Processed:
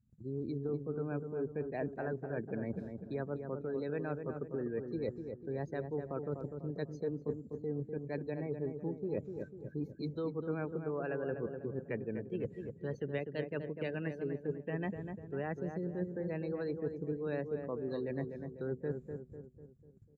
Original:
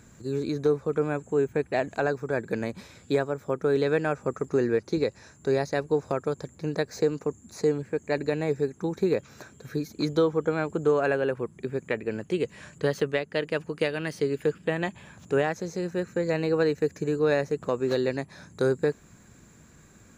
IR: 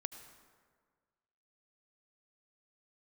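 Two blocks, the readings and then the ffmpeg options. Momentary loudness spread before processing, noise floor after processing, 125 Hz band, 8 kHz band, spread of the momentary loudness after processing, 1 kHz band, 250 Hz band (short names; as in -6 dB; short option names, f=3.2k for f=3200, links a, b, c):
8 LU, -56 dBFS, -7.0 dB, n/a, 4 LU, -13.5 dB, -9.0 dB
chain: -filter_complex "[0:a]acrossover=split=290[a][b];[a]acontrast=84[c];[c][b]amix=inputs=2:normalize=0,afftdn=nr=26:nf=-34,adynamicequalizer=threshold=0.01:dfrequency=100:dqfactor=0.8:tfrequency=100:tqfactor=0.8:attack=5:release=100:ratio=0.375:range=2:mode=cutabove:tftype=bell,agate=range=-17dB:threshold=-50dB:ratio=16:detection=peak,areverse,acompressor=threshold=-33dB:ratio=8,areverse,asplit=2[d][e];[e]adelay=248,lowpass=f=1.3k:p=1,volume=-6dB,asplit=2[f][g];[g]adelay=248,lowpass=f=1.3k:p=1,volume=0.5,asplit=2[h][i];[i]adelay=248,lowpass=f=1.3k:p=1,volume=0.5,asplit=2[j][k];[k]adelay=248,lowpass=f=1.3k:p=1,volume=0.5,asplit=2[l][m];[m]adelay=248,lowpass=f=1.3k:p=1,volume=0.5,asplit=2[n][o];[o]adelay=248,lowpass=f=1.3k:p=1,volume=0.5[p];[d][f][h][j][l][n][p]amix=inputs=7:normalize=0,volume=-2dB"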